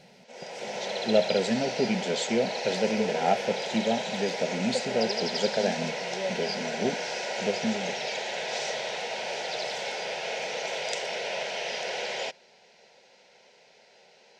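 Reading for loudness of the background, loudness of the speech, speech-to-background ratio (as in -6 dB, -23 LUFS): -31.5 LUFS, -30.0 LUFS, 1.5 dB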